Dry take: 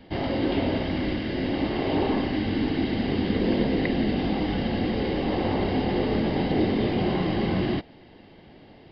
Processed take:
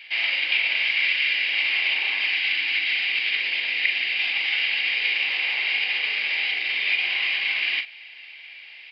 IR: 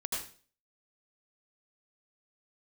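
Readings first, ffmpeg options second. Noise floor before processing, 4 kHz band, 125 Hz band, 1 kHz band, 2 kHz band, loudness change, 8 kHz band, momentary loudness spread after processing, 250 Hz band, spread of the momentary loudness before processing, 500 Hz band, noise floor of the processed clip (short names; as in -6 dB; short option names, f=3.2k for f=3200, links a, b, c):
-50 dBFS, +13.0 dB, under -40 dB, -11.0 dB, +16.0 dB, +4.5 dB, n/a, 6 LU, under -30 dB, 3 LU, -22.5 dB, -44 dBFS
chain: -filter_complex "[0:a]alimiter=limit=-19.5dB:level=0:latency=1:release=42,highpass=f=2.4k:t=q:w=10,asplit=2[a][b];[b]adelay=41,volume=-8.5dB[c];[a][c]amix=inputs=2:normalize=0,volume=7dB"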